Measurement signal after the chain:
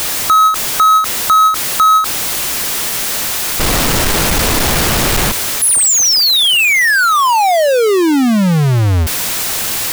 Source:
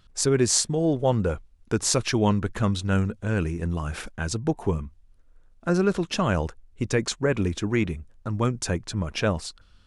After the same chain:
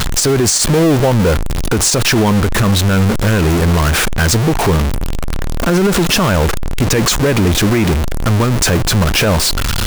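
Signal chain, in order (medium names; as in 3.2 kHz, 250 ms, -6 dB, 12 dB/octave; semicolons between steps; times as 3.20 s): jump at every zero crossing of -18 dBFS; peak limiter -14 dBFS; endings held to a fixed fall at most 110 dB/s; trim +8.5 dB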